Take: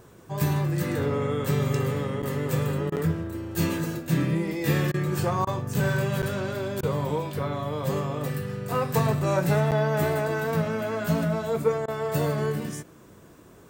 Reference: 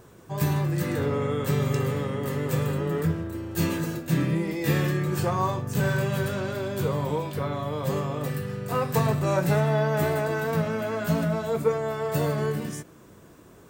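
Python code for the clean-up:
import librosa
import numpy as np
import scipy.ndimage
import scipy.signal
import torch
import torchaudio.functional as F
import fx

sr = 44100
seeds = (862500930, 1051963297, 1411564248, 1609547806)

y = fx.fix_interpolate(x, sr, at_s=(2.22, 2.96, 6.22, 9.71), length_ms=8.4)
y = fx.fix_interpolate(y, sr, at_s=(2.9, 4.92, 5.45, 6.81, 11.86), length_ms=19.0)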